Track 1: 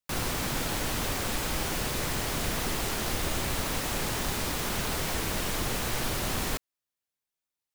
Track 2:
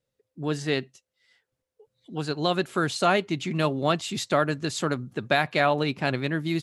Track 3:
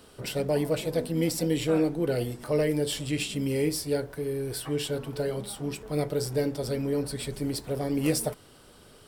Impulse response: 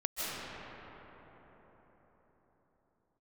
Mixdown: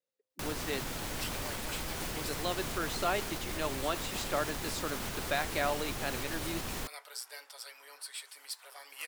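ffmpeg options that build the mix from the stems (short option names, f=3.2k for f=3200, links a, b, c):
-filter_complex "[0:a]alimiter=limit=-24dB:level=0:latency=1:release=216,adelay=300,volume=-3.5dB[a];[1:a]highpass=310,volume=-9.5dB,asplit=2[b][c];[2:a]highpass=f=1k:w=0.5412,highpass=f=1k:w=1.3066,adelay=950,volume=-4.5dB[d];[c]apad=whole_len=441954[e];[d][e]sidechaincompress=threshold=-44dB:ratio=8:attack=16:release=420[f];[a][b][f]amix=inputs=3:normalize=0"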